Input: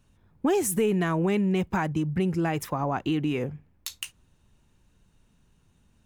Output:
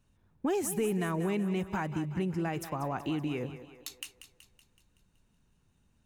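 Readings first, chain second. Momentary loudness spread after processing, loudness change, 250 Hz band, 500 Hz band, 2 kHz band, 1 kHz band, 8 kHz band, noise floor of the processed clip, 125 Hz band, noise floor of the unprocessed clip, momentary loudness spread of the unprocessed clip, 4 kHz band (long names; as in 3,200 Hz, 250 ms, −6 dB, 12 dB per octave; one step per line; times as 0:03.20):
12 LU, −6.5 dB, −6.5 dB, −6.0 dB, −6.0 dB, −6.0 dB, −6.0 dB, −70 dBFS, −6.5 dB, −65 dBFS, 13 LU, −6.5 dB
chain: notch filter 3,300 Hz, Q 28
on a send: feedback echo with a high-pass in the loop 188 ms, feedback 54%, high-pass 240 Hz, level −11.5 dB
on the sum: level −6.5 dB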